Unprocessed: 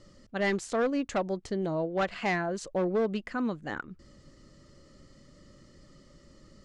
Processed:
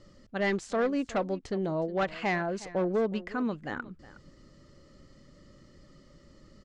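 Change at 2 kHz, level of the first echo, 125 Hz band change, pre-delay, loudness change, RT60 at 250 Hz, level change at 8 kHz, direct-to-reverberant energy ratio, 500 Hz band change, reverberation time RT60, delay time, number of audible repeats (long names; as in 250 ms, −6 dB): −0.5 dB, −18.0 dB, 0.0 dB, no reverb audible, 0.0 dB, no reverb audible, −4.0 dB, no reverb audible, 0.0 dB, no reverb audible, 365 ms, 1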